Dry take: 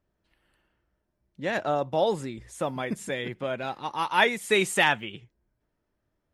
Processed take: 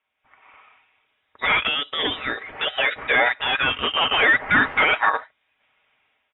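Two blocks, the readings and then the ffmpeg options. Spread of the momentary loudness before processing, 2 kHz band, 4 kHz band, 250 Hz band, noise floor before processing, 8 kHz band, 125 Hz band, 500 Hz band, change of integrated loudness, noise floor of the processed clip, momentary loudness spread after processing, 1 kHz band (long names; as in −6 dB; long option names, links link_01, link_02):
11 LU, +10.0 dB, +10.5 dB, 0.0 dB, −79 dBFS, below −40 dB, −2.0 dB, −1.5 dB, +7.0 dB, −72 dBFS, 9 LU, +5.0 dB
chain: -filter_complex "[0:a]asplit=2[link_01][link_02];[link_02]acompressor=threshold=-30dB:ratio=6,volume=0dB[link_03];[link_01][link_03]amix=inputs=2:normalize=0,alimiter=limit=-17.5dB:level=0:latency=1:release=10,aecho=1:1:5.9:0.42,dynaudnorm=framelen=170:gausssize=5:maxgain=13dB,highpass=frequency=1200:poles=1,aeval=exprs='0.944*sin(PI/2*4.47*val(0)/0.944)':channel_layout=same,aderivative,lowpass=frequency=3400:width_type=q:width=0.5098,lowpass=frequency=3400:width_type=q:width=0.6013,lowpass=frequency=3400:width_type=q:width=0.9,lowpass=frequency=3400:width_type=q:width=2.563,afreqshift=-4000"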